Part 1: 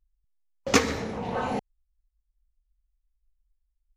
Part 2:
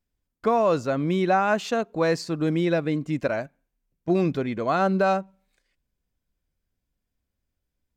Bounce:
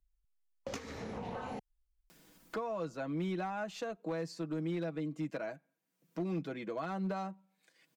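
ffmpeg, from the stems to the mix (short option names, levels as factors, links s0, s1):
-filter_complex "[0:a]acompressor=threshold=0.0251:ratio=12,volume=0.562[s0];[1:a]highpass=f=170:w=0.5412,highpass=f=170:w=1.3066,acompressor=mode=upward:threshold=0.0398:ratio=2.5,aecho=1:1:6.2:0.59,adelay=2100,volume=0.335[s1];[s0][s1]amix=inputs=2:normalize=0,acrossover=split=170[s2][s3];[s3]acompressor=threshold=0.0158:ratio=5[s4];[s2][s4]amix=inputs=2:normalize=0,asoftclip=type=hard:threshold=0.0316"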